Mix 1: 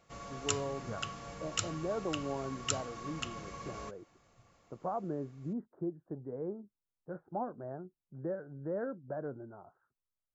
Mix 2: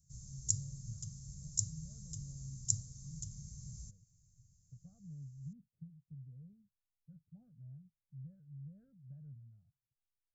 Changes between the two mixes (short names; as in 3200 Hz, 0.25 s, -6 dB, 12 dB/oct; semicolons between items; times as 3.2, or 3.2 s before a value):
background +4.0 dB; master: add elliptic band-stop 140–6300 Hz, stop band 40 dB